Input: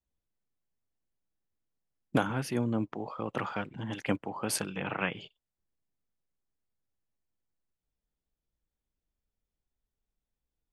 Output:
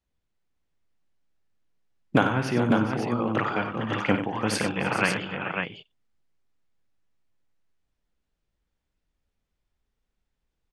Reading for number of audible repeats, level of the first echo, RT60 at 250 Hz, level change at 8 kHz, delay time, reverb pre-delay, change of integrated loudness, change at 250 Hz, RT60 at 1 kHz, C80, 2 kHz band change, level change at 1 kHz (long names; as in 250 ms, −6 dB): 5, −11.0 dB, no reverb audible, +1.0 dB, 56 ms, no reverb audible, +7.5 dB, +8.0 dB, no reverb audible, no reverb audible, +10.0 dB, +9.0 dB